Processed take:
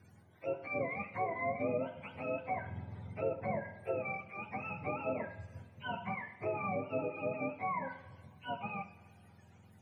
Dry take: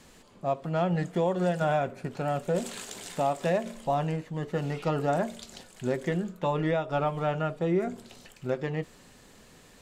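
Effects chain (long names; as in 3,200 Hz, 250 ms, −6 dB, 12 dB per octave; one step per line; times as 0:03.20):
frequency axis turned over on the octave scale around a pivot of 610 Hz
treble cut that deepens with the level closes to 1,700 Hz, closed at −24 dBFS
coupled-rooms reverb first 0.74 s, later 3.1 s, from −18 dB, DRR 9 dB
level −7.5 dB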